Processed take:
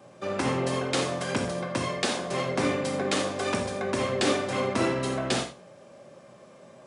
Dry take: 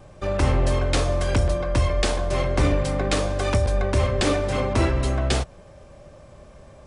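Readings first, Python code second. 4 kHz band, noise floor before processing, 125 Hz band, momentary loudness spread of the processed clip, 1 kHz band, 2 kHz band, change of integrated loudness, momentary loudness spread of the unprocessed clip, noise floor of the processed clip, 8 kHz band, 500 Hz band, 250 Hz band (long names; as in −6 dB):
−1.0 dB, −47 dBFS, −12.0 dB, 4 LU, −2.0 dB, −1.5 dB, −5.0 dB, 2 LU, −52 dBFS, −1.5 dB, −3.5 dB, −2.0 dB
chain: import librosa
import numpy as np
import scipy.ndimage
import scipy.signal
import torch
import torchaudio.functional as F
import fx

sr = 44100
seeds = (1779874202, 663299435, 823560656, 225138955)

p1 = scipy.signal.sosfilt(scipy.signal.butter(4, 160.0, 'highpass', fs=sr, output='sos'), x)
p2 = p1 + fx.echo_single(p1, sr, ms=119, db=-22.5, dry=0)
p3 = fx.rev_gated(p2, sr, seeds[0], gate_ms=110, shape='flat', drr_db=3.5)
y = F.gain(torch.from_numpy(p3), -3.0).numpy()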